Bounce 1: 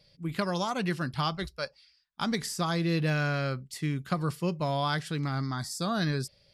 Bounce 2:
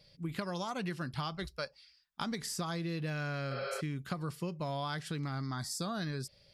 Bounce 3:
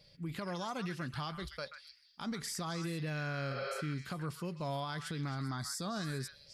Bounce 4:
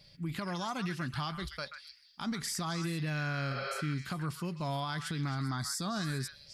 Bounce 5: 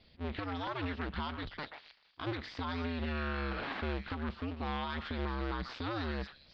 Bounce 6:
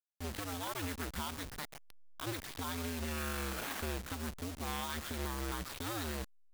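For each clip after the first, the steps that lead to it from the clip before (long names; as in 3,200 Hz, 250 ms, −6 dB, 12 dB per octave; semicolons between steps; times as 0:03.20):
healed spectral selection 0:03.54–0:03.78, 400–5,400 Hz before; downward compressor, threshold −34 dBFS, peak gain reduction 10 dB
brickwall limiter −30.5 dBFS, peak gain reduction 9 dB; echo through a band-pass that steps 132 ms, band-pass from 1,700 Hz, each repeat 1.4 octaves, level −4.5 dB
parametric band 490 Hz −7.5 dB 0.59 octaves; level +4 dB
sub-harmonics by changed cycles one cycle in 2, inverted; Butterworth low-pass 4,000 Hz 36 dB per octave; level −1.5 dB
hold until the input has moved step −39.5 dBFS; high-shelf EQ 3,400 Hz +10.5 dB; level −3 dB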